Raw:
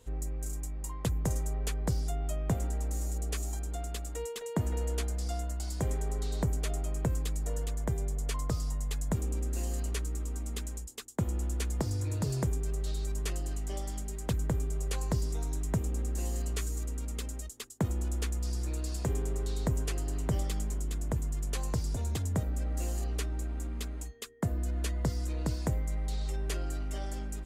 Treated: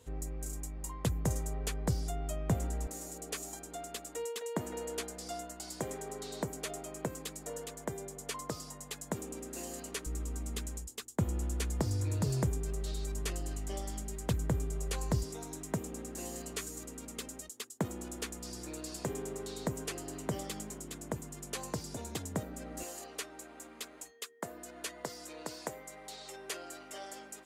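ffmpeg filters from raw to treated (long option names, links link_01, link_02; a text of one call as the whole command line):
ffmpeg -i in.wav -af "asetnsamples=nb_out_samples=441:pad=0,asendcmd='2.87 highpass f 240;10.06 highpass f 60;15.23 highpass f 190;22.83 highpass f 470',highpass=64" out.wav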